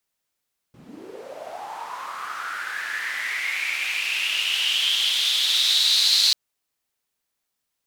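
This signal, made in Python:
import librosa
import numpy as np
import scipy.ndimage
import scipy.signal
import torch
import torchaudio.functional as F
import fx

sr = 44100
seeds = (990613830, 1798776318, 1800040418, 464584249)

y = fx.riser_noise(sr, seeds[0], length_s=5.59, colour='white', kind='bandpass', start_hz=130.0, end_hz=4200.0, q=6.9, swell_db=12.5, law='linear')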